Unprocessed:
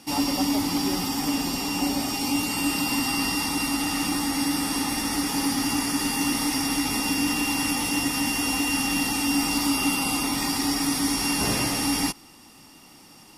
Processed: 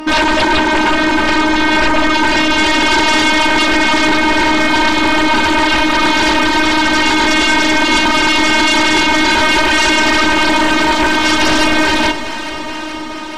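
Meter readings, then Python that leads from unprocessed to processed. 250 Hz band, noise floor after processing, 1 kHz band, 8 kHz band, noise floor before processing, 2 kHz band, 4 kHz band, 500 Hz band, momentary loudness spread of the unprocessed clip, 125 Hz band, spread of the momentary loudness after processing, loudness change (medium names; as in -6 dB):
+9.5 dB, -23 dBFS, +17.5 dB, +3.5 dB, -50 dBFS, +19.0 dB, +13.0 dB, +19.0 dB, 2 LU, +7.0 dB, 2 LU, +13.0 dB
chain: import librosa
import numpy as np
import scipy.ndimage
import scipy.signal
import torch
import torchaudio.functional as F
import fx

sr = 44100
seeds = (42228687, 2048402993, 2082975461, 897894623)

p1 = scipy.signal.sosfilt(scipy.signal.butter(2, 1500.0, 'lowpass', fs=sr, output='sos'), x)
p2 = fx.dereverb_blind(p1, sr, rt60_s=0.58)
p3 = scipy.signal.sosfilt(scipy.signal.butter(2, 160.0, 'highpass', fs=sr, output='sos'), p2)
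p4 = p3 + 0.68 * np.pad(p3, (int(5.0 * sr / 1000.0), 0))[:len(p3)]
p5 = fx.robotise(p4, sr, hz=311.0)
p6 = fx.fold_sine(p5, sr, drive_db=18, ceiling_db=-16.0)
p7 = p6 + fx.echo_alternate(p6, sr, ms=213, hz=860.0, feedback_pct=86, wet_db=-11, dry=0)
y = p7 * librosa.db_to_amplitude(7.5)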